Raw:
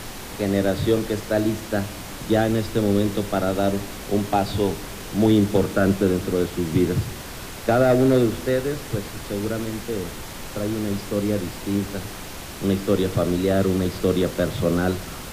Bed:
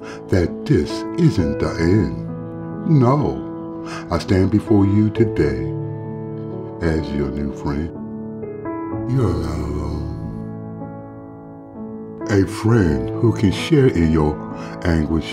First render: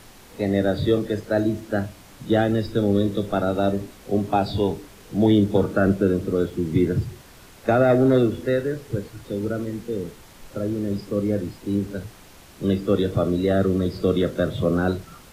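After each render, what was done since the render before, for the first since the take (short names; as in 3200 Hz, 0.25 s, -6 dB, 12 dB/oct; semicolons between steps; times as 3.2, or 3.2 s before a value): noise print and reduce 12 dB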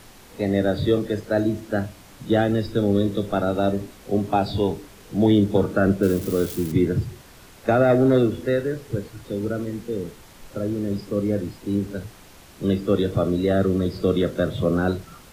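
6.03–6.72 switching spikes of -23.5 dBFS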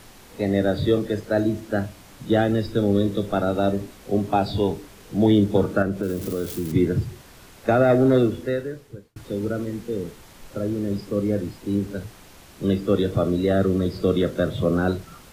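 5.82–6.71 compressor 2.5:1, threshold -23 dBFS; 8.26–9.16 fade out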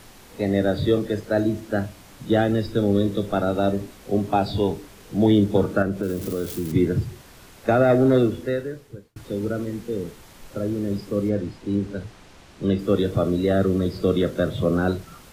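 11.29–12.79 air absorption 56 m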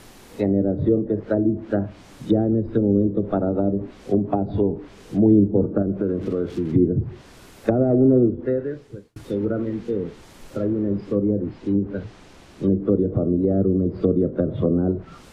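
bell 320 Hz +4 dB 1.5 oct; treble ducked by the level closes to 440 Hz, closed at -15 dBFS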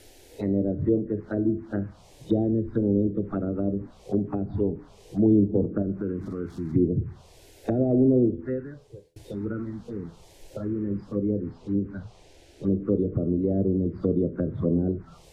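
envelope phaser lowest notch 180 Hz, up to 1500 Hz, full sweep at -14.5 dBFS; resonator 84 Hz, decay 0.52 s, harmonics all, mix 40%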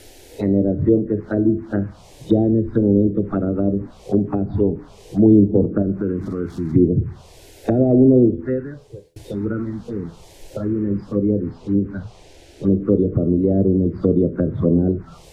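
gain +7.5 dB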